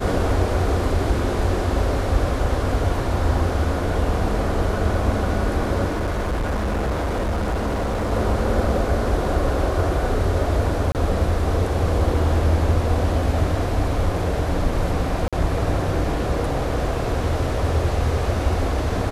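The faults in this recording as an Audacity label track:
5.870000	8.130000	clipping −19.5 dBFS
10.920000	10.950000	drop-out 28 ms
15.280000	15.330000	drop-out 46 ms

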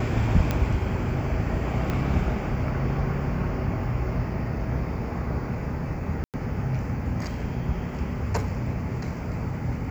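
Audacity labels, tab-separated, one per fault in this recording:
0.510000	0.510000	click −11 dBFS
1.900000	1.900000	click −15 dBFS
6.240000	6.340000	drop-out 98 ms

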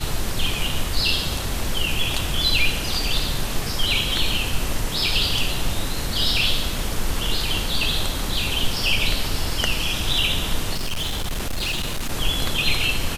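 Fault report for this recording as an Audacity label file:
10.730000	12.120000	clipping −21 dBFS

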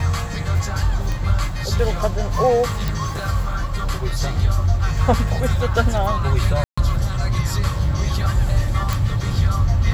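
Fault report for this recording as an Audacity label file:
1.120000	1.120000	click
2.880000	2.880000	click
6.640000	6.780000	drop-out 135 ms
8.930000	8.930000	click

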